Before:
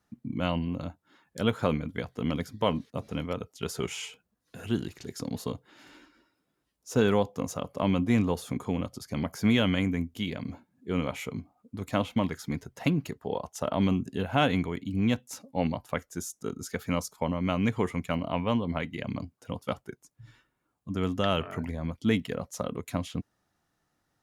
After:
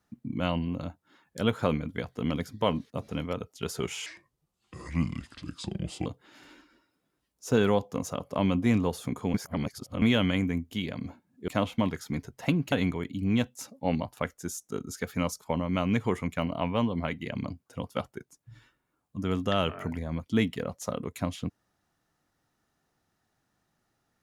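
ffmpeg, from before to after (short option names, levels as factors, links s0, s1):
-filter_complex "[0:a]asplit=7[s0][s1][s2][s3][s4][s5][s6];[s0]atrim=end=4.064[s7];[s1]atrim=start=4.06:end=5.5,asetpts=PTS-STARTPTS,asetrate=31752,aresample=44100[s8];[s2]atrim=start=5.496:end=8.782[s9];[s3]atrim=start=8.778:end=9.462,asetpts=PTS-STARTPTS,areverse[s10];[s4]atrim=start=9.458:end=10.922[s11];[s5]atrim=start=11.858:end=13.102[s12];[s6]atrim=start=14.438[s13];[s7][s8]acrossfade=d=0.004:c1=hsin:c2=hsin[s14];[s14][s9]acrossfade=d=0.004:c1=hsin:c2=hsin[s15];[s15][s10]acrossfade=d=0.004:c1=hsin:c2=hsin[s16];[s16][s11]acrossfade=d=0.004:c1=hsin:c2=hsin[s17];[s17][s12]acrossfade=d=0.004:c1=hsin:c2=hsin[s18];[s18][s13]acrossfade=d=0.004:c1=hsin:c2=hsin"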